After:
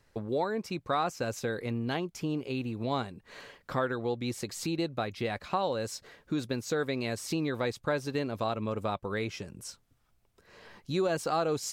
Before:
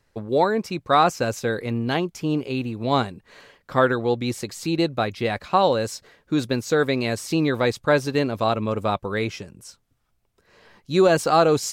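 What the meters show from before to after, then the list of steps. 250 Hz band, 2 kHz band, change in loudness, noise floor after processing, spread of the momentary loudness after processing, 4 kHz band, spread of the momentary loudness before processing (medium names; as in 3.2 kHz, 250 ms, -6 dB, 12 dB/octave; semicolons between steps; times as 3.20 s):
-9.5 dB, -10.0 dB, -10.5 dB, -69 dBFS, 8 LU, -9.5 dB, 9 LU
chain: compression 2:1, threshold -36 dBFS, peak gain reduction 13 dB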